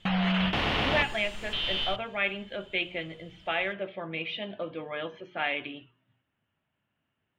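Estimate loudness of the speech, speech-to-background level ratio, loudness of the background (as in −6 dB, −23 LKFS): −32.5 LKFS, −4.0 dB, −28.5 LKFS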